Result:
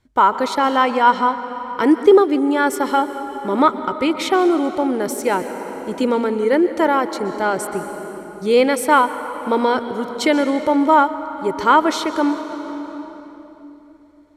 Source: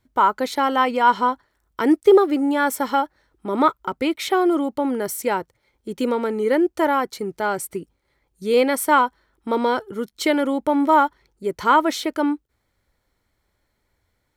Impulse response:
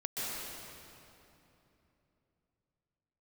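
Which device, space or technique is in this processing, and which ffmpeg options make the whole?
compressed reverb return: -filter_complex "[0:a]asplit=2[link_01][link_02];[1:a]atrim=start_sample=2205[link_03];[link_02][link_03]afir=irnorm=-1:irlink=0,acompressor=threshold=-18dB:ratio=6,volume=-7.5dB[link_04];[link_01][link_04]amix=inputs=2:normalize=0,lowpass=9800,volume=1.5dB"

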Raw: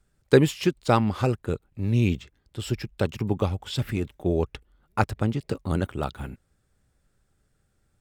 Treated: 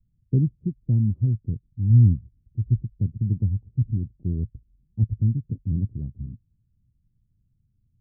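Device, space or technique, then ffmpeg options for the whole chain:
the neighbour's flat through the wall: -filter_complex "[0:a]lowpass=frequency=230:width=0.5412,lowpass=frequency=230:width=1.3066,equalizer=frequency=110:width_type=o:width=0.63:gain=7,asettb=1/sr,asplit=3[link_01][link_02][link_03];[link_01]atrim=end=1.904[link_04];[link_02]atrim=start=1.9:end=2.81,asetpts=PTS-STARTPTS,afade=type=in:duration=0.004:curve=qsin,afade=type=out:start_time=0.906:duration=0.004:curve=qsin,lowshelf=frequency=120:gain=5.5[link_05];[link_03]atrim=start=2.806[link_06];[link_04][link_05]acrossfade=duration=0.004:curve1=hsin:curve2=qsin[link_07];[link_07][link_06]acrossfade=duration=0.004:curve1=qsin:curve2=hsin"

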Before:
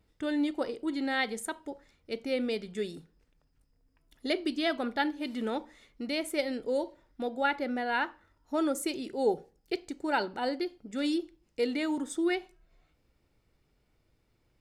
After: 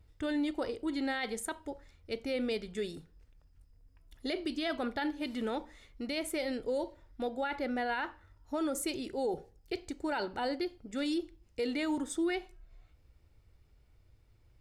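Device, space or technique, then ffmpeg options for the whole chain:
car stereo with a boomy subwoofer: -af "lowshelf=frequency=130:width_type=q:width=1.5:gain=9,alimiter=level_in=1.5dB:limit=-24dB:level=0:latency=1:release=20,volume=-1.5dB"

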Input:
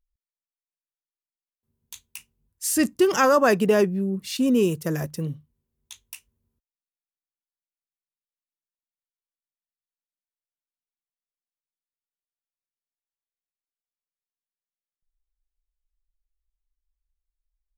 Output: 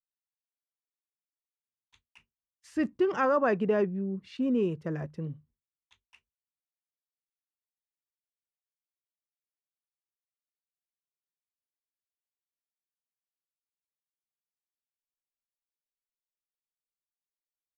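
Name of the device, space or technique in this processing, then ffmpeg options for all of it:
hearing-loss simulation: -af "lowpass=2100,agate=range=-33dB:threshold=-51dB:ratio=3:detection=peak,volume=-7dB"

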